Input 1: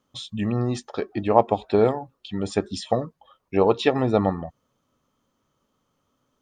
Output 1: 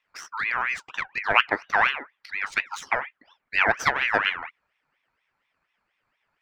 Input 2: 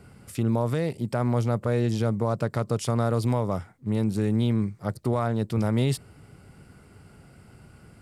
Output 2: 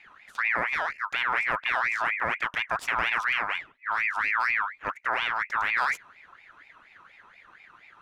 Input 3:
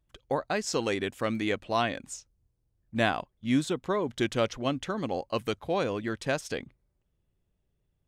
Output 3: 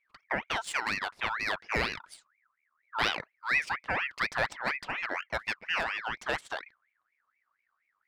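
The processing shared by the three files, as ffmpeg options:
-af "adynamicsmooth=sensitivity=6.5:basefreq=3800,aeval=exprs='val(0)*sin(2*PI*1700*n/s+1700*0.35/4.2*sin(2*PI*4.2*n/s))':c=same"

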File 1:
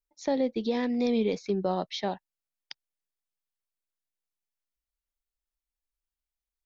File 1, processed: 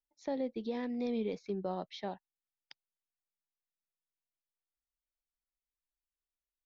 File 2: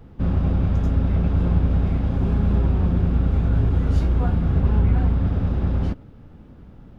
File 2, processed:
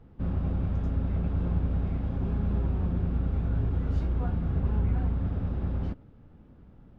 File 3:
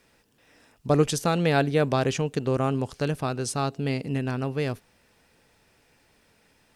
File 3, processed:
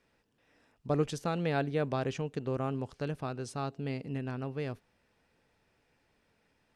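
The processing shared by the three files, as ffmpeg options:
-af "lowpass=f=3300:p=1,volume=0.376"

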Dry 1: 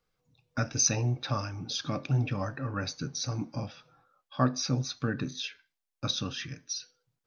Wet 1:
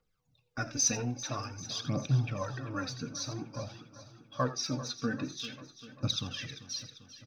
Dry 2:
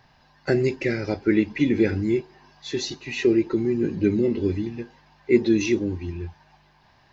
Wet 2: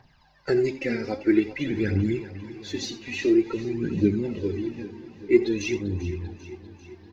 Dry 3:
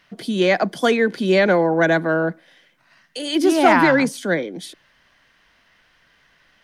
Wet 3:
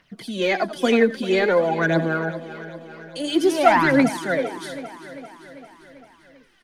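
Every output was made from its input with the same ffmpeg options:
-filter_complex "[0:a]asplit=2[s0][s1];[s1]aecho=0:1:85:0.2[s2];[s0][s2]amix=inputs=2:normalize=0,aphaser=in_gain=1:out_gain=1:delay=4.5:decay=0.62:speed=0.5:type=triangular,asplit=2[s3][s4];[s4]aecho=0:1:394|788|1182|1576|1970|2364:0.178|0.107|0.064|0.0384|0.023|0.0138[s5];[s3][s5]amix=inputs=2:normalize=0,volume=0.562"

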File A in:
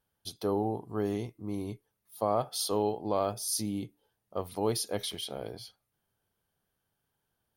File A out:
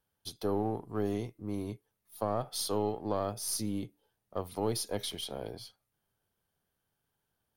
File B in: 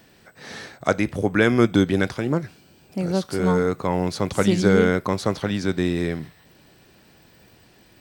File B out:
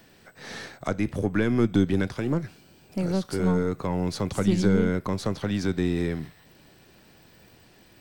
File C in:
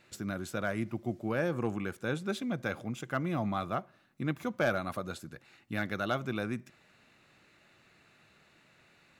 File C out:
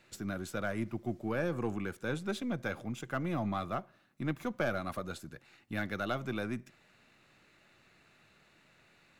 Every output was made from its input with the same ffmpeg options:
-filter_complex "[0:a]aeval=exprs='if(lt(val(0),0),0.708*val(0),val(0))':c=same,acrossover=split=310[s0][s1];[s1]acompressor=threshold=0.0316:ratio=3[s2];[s0][s2]amix=inputs=2:normalize=0"

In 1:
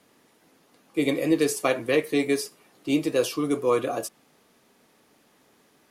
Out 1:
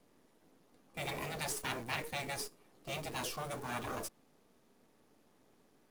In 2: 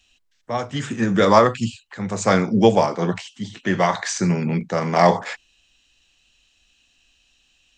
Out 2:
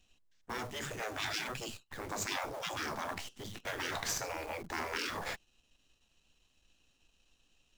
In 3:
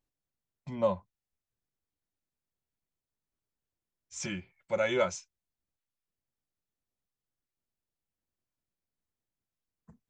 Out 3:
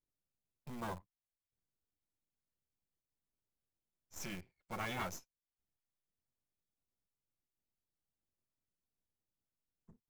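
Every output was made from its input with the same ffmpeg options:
-filter_complex "[0:a]aeval=exprs='if(lt(val(0),0),0.251*val(0),val(0))':c=same,highshelf=f=5100:g=-7,afftfilt=real='re*lt(hypot(re,im),0.112)':imag='im*lt(hypot(re,im),0.112)':win_size=1024:overlap=0.75,asplit=2[s0][s1];[s1]acrusher=bits=6:mix=0:aa=0.000001,volume=0.473[s2];[s0][s2]amix=inputs=2:normalize=0,equalizer=f=2200:w=0.45:g=-6.5,acrossover=split=590[s3][s4];[s3]asoftclip=type=tanh:threshold=0.01[s5];[s5][s4]amix=inputs=2:normalize=0,volume=0.841"

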